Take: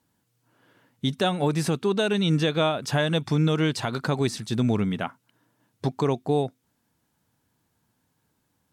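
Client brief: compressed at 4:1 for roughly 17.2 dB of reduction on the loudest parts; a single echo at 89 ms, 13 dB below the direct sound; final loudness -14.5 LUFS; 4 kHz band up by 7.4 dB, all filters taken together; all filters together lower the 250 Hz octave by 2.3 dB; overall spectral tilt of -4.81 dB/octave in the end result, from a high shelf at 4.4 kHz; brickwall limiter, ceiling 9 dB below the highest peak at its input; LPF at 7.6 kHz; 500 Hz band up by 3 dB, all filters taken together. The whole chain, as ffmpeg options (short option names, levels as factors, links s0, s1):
-af "lowpass=7600,equalizer=f=250:t=o:g=-5,equalizer=f=500:t=o:g=5,equalizer=f=4000:t=o:g=7,highshelf=f=4400:g=4,acompressor=threshold=0.0126:ratio=4,alimiter=level_in=2:limit=0.0631:level=0:latency=1,volume=0.501,aecho=1:1:89:0.224,volume=18.8"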